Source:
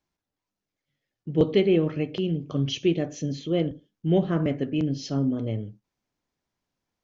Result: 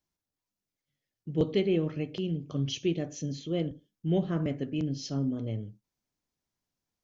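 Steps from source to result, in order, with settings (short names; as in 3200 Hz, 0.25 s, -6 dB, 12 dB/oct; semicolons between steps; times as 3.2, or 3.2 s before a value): tone controls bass +3 dB, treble +7 dB; gain -7 dB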